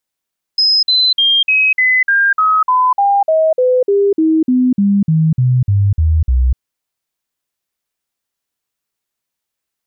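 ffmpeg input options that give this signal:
-f lavfi -i "aevalsrc='0.376*clip(min(mod(t,0.3),0.25-mod(t,0.3))/0.005,0,1)*sin(2*PI*5090*pow(2,-floor(t/0.3)/3)*mod(t,0.3))':d=6:s=44100"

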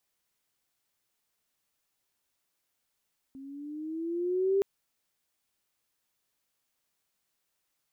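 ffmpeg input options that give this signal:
-f lavfi -i "aevalsrc='pow(10,(-21.5+21*(t/1.27-1))/20)*sin(2*PI*266*1.27/(7*log(2)/12)*(exp(7*log(2)/12*t/1.27)-1))':d=1.27:s=44100"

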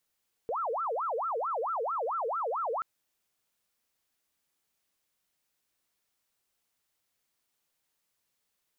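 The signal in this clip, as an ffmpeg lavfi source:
-f lavfi -i "aevalsrc='0.0355*sin(2*PI*(901.5*t-458.5/(2*PI*4.5)*sin(2*PI*4.5*t)))':d=2.33:s=44100"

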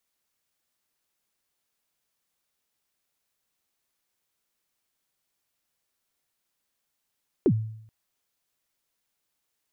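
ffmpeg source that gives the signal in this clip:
-f lavfi -i "aevalsrc='0.188*pow(10,-3*t/0.7)*sin(2*PI*(440*0.065/log(110/440)*(exp(log(110/440)*min(t,0.065)/0.065)-1)+110*max(t-0.065,0)))':d=0.43:s=44100"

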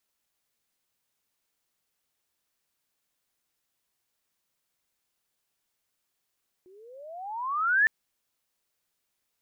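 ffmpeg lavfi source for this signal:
-f lavfi -i "aevalsrc='pow(10,(-17+34.5*(t/1.21-1))/20)*sin(2*PI*357*1.21/(28*log(2)/12)*(exp(28*log(2)/12*t/1.21)-1))':d=1.21:s=44100"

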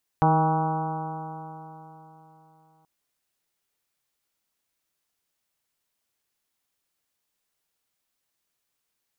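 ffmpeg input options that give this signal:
-f lavfi -i "aevalsrc='0.1*pow(10,-3*t/3.54)*sin(2*PI*157.09*t)+0.0447*pow(10,-3*t/3.54)*sin(2*PI*314.69*t)+0.0355*pow(10,-3*t/3.54)*sin(2*PI*473.33*t)+0.0299*pow(10,-3*t/3.54)*sin(2*PI*633.5*t)+0.112*pow(10,-3*t/3.54)*sin(2*PI*795.72*t)+0.0562*pow(10,-3*t/3.54)*sin(2*PI*960.47*t)+0.0335*pow(10,-3*t/3.54)*sin(2*PI*1128.23*t)+0.0168*pow(10,-3*t/3.54)*sin(2*PI*1299.46*t)+0.0112*pow(10,-3*t/3.54)*sin(2*PI*1474.61*t)':d=2.63:s=44100"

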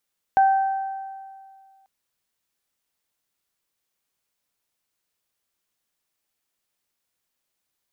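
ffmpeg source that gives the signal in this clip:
-f lavfi -i "aevalsrc='0.251*pow(10,-3*t/2.03)*sin(2*PI*776*t)+0.0473*pow(10,-3*t/1.62)*sin(2*PI*1552*t)':d=1.49:s=44100"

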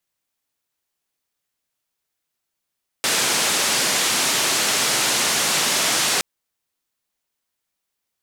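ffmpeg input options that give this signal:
-f lavfi -i "anoisesrc=c=white:d=3.17:r=44100:seed=1,highpass=f=160,lowpass=f=8200,volume=-11dB"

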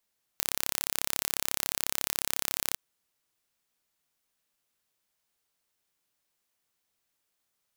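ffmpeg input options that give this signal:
-f lavfi -i "aevalsrc='0.841*eq(mod(n,1293),0)':d=2.36:s=44100"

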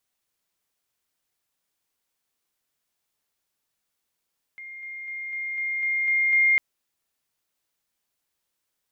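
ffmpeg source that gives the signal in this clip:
-f lavfi -i "aevalsrc='pow(10,(-37+3*floor(t/0.25))/20)*sin(2*PI*2120*t)':d=2:s=44100"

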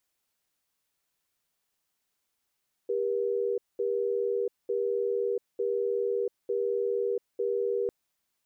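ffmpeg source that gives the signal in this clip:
-f lavfi -i "aevalsrc='0.0376*(sin(2*PI*398*t)+sin(2*PI*478*t))*clip(min(mod(t,0.9),0.69-mod(t,0.9))/0.005,0,1)':d=5:s=44100"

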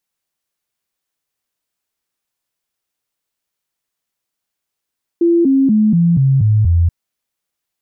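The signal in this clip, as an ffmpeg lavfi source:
-f lavfi -i "aevalsrc='0.376*clip(min(mod(t,0.24),0.24-mod(t,0.24))/0.005,0,1)*sin(2*PI*340*pow(2,-floor(t/0.24)/3)*mod(t,0.24))':d=1.68:s=44100"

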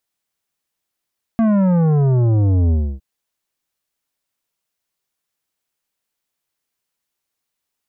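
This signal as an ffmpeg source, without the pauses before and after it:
-f lavfi -i "aevalsrc='0.224*clip((1.61-t)/0.29,0,1)*tanh(3.55*sin(2*PI*230*1.61/log(65/230)*(exp(log(65/230)*t/1.61)-1)))/tanh(3.55)':d=1.61:s=44100"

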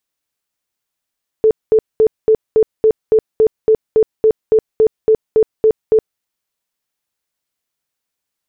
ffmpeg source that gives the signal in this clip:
-f lavfi -i "aevalsrc='0.473*sin(2*PI*438*mod(t,0.28))*lt(mod(t,0.28),30/438)':d=4.76:s=44100"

